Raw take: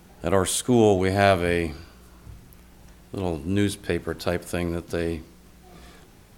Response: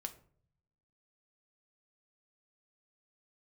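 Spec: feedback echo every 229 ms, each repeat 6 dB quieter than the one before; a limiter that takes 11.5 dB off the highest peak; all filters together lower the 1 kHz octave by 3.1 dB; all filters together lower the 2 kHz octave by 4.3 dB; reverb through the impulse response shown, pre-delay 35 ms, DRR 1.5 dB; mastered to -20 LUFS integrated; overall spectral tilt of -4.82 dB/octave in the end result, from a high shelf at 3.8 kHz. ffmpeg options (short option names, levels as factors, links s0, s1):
-filter_complex "[0:a]equalizer=f=1000:t=o:g=-4.5,equalizer=f=2000:t=o:g=-5.5,highshelf=f=3800:g=5.5,alimiter=limit=0.119:level=0:latency=1,aecho=1:1:229|458|687|916|1145|1374:0.501|0.251|0.125|0.0626|0.0313|0.0157,asplit=2[s0][s1];[1:a]atrim=start_sample=2205,adelay=35[s2];[s1][s2]afir=irnorm=-1:irlink=0,volume=1.12[s3];[s0][s3]amix=inputs=2:normalize=0,volume=2.24"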